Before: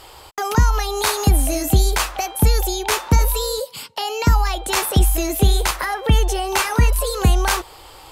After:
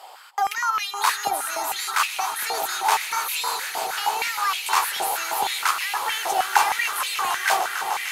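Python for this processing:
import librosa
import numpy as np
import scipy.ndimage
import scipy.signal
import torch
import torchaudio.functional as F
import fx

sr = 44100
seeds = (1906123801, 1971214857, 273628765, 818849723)

y = fx.echo_swell(x, sr, ms=150, loudest=8, wet_db=-13.5)
y = fx.filter_held_highpass(y, sr, hz=6.4, low_hz=710.0, high_hz=2500.0)
y = F.gain(torch.from_numpy(y), -5.5).numpy()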